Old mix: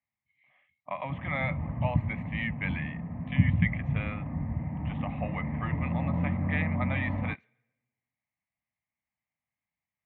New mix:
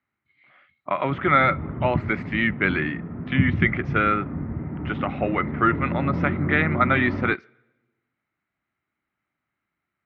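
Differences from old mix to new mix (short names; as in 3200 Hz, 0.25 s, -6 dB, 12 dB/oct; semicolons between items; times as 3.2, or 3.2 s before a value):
speech +8.5 dB; master: remove fixed phaser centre 1400 Hz, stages 6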